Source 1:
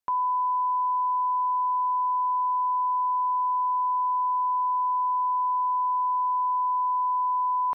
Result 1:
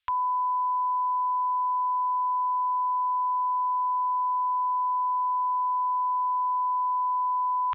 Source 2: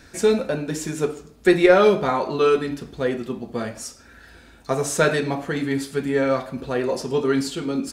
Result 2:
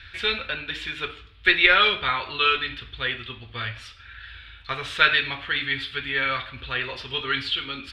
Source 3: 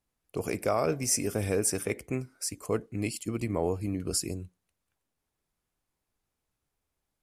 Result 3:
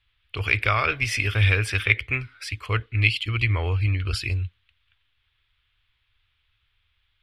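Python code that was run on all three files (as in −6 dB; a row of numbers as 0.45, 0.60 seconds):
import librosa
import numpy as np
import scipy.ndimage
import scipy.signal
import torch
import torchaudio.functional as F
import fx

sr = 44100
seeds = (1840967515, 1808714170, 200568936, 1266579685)

y = fx.curve_eq(x, sr, hz=(110.0, 160.0, 400.0, 700.0, 1300.0, 3400.0, 6500.0), db=(0, -24, -19, -19, -2, 10, -26))
y = y * 10.0 ** (-26 / 20.0) / np.sqrt(np.mean(np.square(y)))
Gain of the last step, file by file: +8.0, +4.5, +15.0 decibels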